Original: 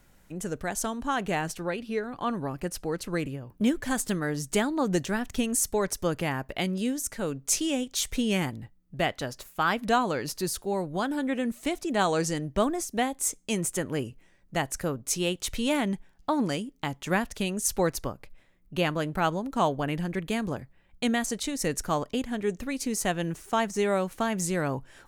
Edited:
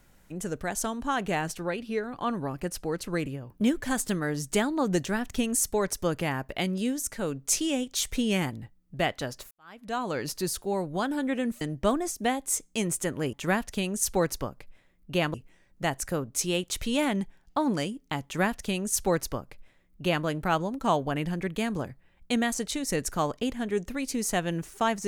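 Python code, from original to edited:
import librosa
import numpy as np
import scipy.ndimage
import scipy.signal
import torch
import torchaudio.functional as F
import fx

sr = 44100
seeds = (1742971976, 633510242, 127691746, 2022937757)

y = fx.edit(x, sr, fx.fade_in_span(start_s=9.51, length_s=0.69, curve='qua'),
    fx.cut(start_s=11.61, length_s=0.73),
    fx.duplicate(start_s=16.96, length_s=2.01, to_s=14.06), tone=tone)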